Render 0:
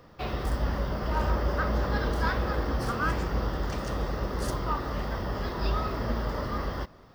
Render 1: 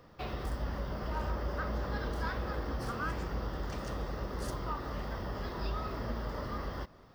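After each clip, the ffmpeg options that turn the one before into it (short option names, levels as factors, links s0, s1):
-af "acompressor=threshold=0.02:ratio=1.5,volume=0.631"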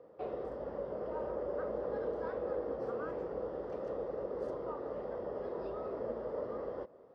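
-af "bandpass=f=490:t=q:w=3.5:csg=0,volume=2.66"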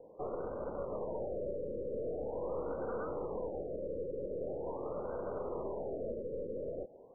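-filter_complex "[0:a]aeval=exprs='(tanh(70.8*val(0)+0.5)-tanh(0.5))/70.8':c=same,acrossover=split=1700[s0][s1];[s0]acrusher=bits=3:mode=log:mix=0:aa=0.000001[s2];[s2][s1]amix=inputs=2:normalize=0,afftfilt=real='re*lt(b*sr/1024,570*pow(1600/570,0.5+0.5*sin(2*PI*0.43*pts/sr)))':imag='im*lt(b*sr/1024,570*pow(1600/570,0.5+0.5*sin(2*PI*0.43*pts/sr)))':win_size=1024:overlap=0.75,volume=1.58"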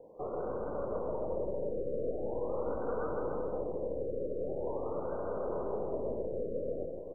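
-af "aecho=1:1:160|288|390.4|472.3|537.9:0.631|0.398|0.251|0.158|0.1,volume=1.12"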